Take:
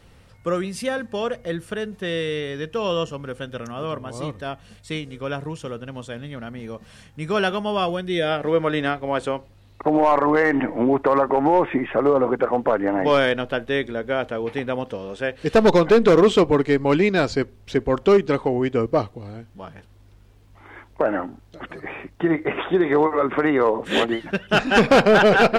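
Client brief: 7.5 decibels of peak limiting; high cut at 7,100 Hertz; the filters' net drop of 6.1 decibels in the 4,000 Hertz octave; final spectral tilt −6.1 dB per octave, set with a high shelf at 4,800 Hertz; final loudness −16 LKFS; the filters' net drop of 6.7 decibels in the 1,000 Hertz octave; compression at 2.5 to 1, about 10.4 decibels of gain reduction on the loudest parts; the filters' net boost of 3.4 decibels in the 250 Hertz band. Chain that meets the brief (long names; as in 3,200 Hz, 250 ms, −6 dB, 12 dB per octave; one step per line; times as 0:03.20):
low-pass filter 7,100 Hz
parametric band 250 Hz +5 dB
parametric band 1,000 Hz −9 dB
parametric band 4,000 Hz −4 dB
high-shelf EQ 4,800 Hz −8 dB
downward compressor 2.5 to 1, threshold −26 dBFS
level +15 dB
brickwall limiter −5.5 dBFS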